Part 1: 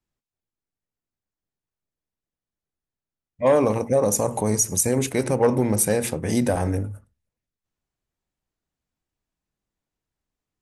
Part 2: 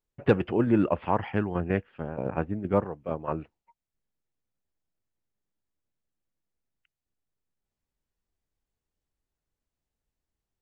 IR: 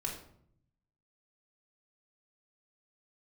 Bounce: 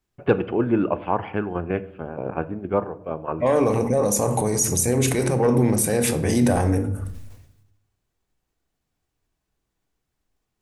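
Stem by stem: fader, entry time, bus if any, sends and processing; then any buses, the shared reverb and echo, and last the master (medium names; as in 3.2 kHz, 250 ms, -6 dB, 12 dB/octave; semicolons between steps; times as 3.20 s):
+2.0 dB, 0.00 s, send -4.5 dB, peak limiter -17 dBFS, peak gain reduction 9 dB; decay stretcher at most 63 dB/s
+1.5 dB, 0.00 s, send -10.5 dB, tone controls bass -4 dB, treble -9 dB; band-stop 1.9 kHz, Q 8.1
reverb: on, RT60 0.65 s, pre-delay 3 ms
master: none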